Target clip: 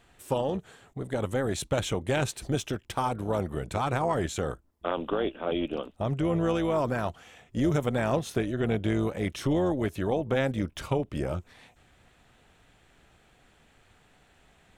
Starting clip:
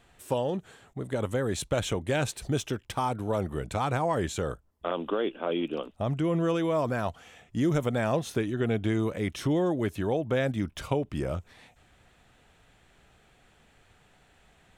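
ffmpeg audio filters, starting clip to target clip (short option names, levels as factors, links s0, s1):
-af "tremolo=f=270:d=0.519,volume=1.33"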